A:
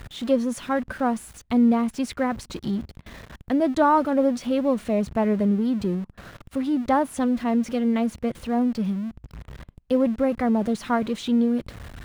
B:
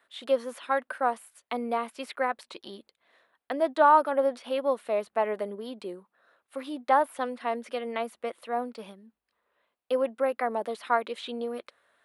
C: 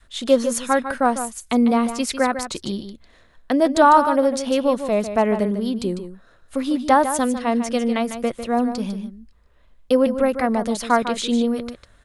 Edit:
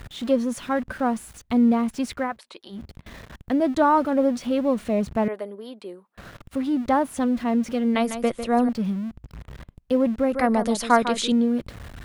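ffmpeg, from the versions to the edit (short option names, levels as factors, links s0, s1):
-filter_complex "[1:a]asplit=2[s0][s1];[2:a]asplit=2[s2][s3];[0:a]asplit=5[s4][s5][s6][s7][s8];[s4]atrim=end=2.39[s9];[s0]atrim=start=2.15:end=2.91[s10];[s5]atrim=start=2.67:end=5.282[s11];[s1]atrim=start=5.278:end=6.172[s12];[s6]atrim=start=6.168:end=7.952[s13];[s2]atrim=start=7.948:end=8.692[s14];[s7]atrim=start=8.688:end=10.322[s15];[s3]atrim=start=10.318:end=11.322[s16];[s8]atrim=start=11.318[s17];[s9][s10]acrossfade=d=0.24:c1=tri:c2=tri[s18];[s18][s11]acrossfade=d=0.24:c1=tri:c2=tri[s19];[s19][s12]acrossfade=d=0.004:c1=hsin:c2=hsin[s20];[s20][s13]acrossfade=d=0.004:c1=hsin:c2=hsin[s21];[s21][s14]acrossfade=d=0.004:c1=hsin:c2=hsin[s22];[s22][s15]acrossfade=d=0.004:c1=hsin:c2=hsin[s23];[s23][s16]acrossfade=d=0.004:c1=hsin:c2=hsin[s24];[s24][s17]acrossfade=d=0.004:c1=hsin:c2=hsin"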